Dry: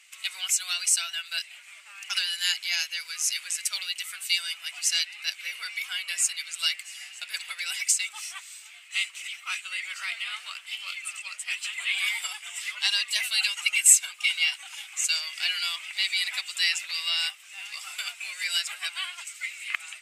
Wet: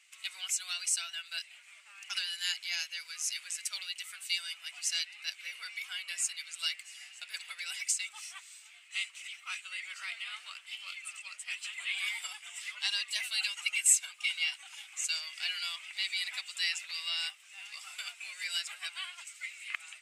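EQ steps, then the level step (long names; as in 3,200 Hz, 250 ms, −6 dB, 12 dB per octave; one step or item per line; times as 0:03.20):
parametric band 13,000 Hz −7.5 dB 0.27 octaves
−7.5 dB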